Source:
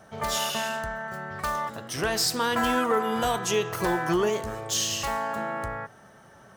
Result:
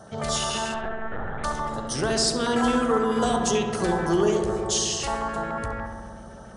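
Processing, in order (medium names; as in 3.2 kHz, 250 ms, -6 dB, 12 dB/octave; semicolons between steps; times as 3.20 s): peaking EQ 1.9 kHz -4 dB 0.93 oct; in parallel at +1 dB: compression, threshold -36 dBFS, peak gain reduction 14.5 dB; on the sum: LFO notch square 6.9 Hz 980–2400 Hz; 0.74–1.44 s: LPC vocoder at 8 kHz pitch kept; filtered feedback delay 67 ms, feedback 84%, low-pass 1.9 kHz, level -5 dB; MP2 128 kbps 24 kHz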